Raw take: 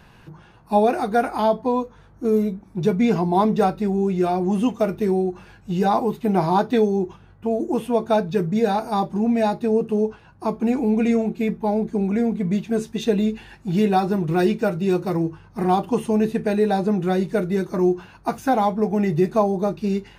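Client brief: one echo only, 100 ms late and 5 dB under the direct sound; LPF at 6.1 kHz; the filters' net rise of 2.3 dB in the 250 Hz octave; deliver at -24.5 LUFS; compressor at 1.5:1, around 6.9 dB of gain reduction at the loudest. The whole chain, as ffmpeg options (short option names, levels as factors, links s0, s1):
-af "lowpass=6100,equalizer=f=250:t=o:g=3,acompressor=threshold=0.0251:ratio=1.5,aecho=1:1:100:0.562,volume=1.06"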